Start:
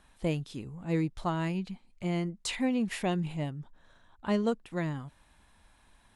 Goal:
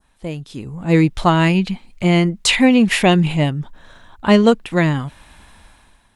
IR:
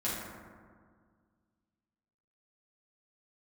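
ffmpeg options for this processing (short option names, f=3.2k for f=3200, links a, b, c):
-af "dynaudnorm=f=150:g=9:m=16dB,adynamicequalizer=threshold=0.0178:dfrequency=2700:dqfactor=1.1:tfrequency=2700:tqfactor=1.1:attack=5:release=100:ratio=0.375:range=2.5:mode=boostabove:tftype=bell,volume=1.5dB"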